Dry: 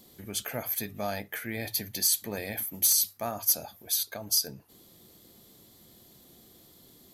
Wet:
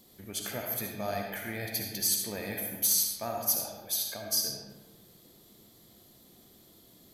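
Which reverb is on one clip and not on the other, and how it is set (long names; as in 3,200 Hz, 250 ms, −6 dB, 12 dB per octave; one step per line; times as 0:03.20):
comb and all-pass reverb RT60 1.3 s, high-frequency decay 0.6×, pre-delay 25 ms, DRR 1 dB
level −3.5 dB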